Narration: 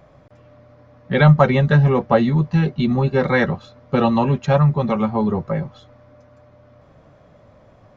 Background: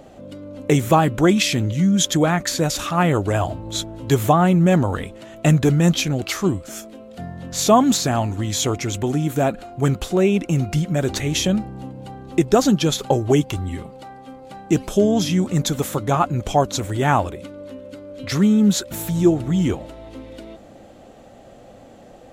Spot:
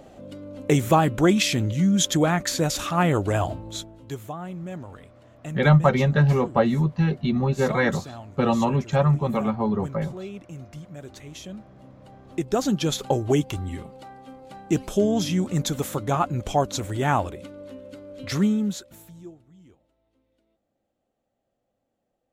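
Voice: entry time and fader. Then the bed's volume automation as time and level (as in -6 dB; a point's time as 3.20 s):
4.45 s, -4.5 dB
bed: 3.54 s -3 dB
4.27 s -19.5 dB
11.47 s -19.5 dB
12.92 s -4.5 dB
18.44 s -4.5 dB
19.51 s -33.5 dB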